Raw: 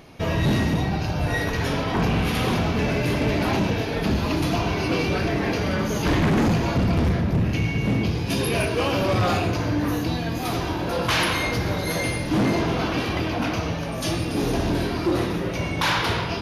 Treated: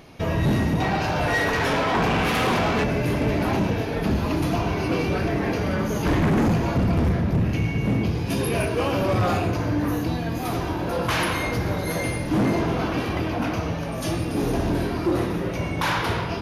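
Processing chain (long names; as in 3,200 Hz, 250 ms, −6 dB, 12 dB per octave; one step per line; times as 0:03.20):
dynamic equaliser 4,100 Hz, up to −6 dB, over −42 dBFS, Q 0.77
0:00.80–0:02.84: mid-hump overdrive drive 18 dB, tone 4,400 Hz, clips at −14.5 dBFS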